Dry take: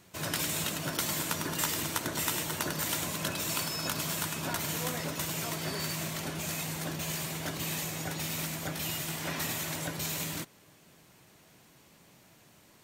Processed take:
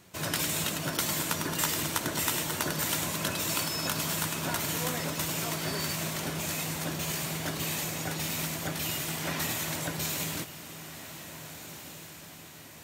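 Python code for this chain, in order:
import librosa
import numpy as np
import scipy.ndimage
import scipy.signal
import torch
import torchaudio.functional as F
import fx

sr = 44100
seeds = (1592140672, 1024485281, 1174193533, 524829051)

y = fx.echo_diffused(x, sr, ms=1692, feedback_pct=53, wet_db=-12.0)
y = y * librosa.db_to_amplitude(2.0)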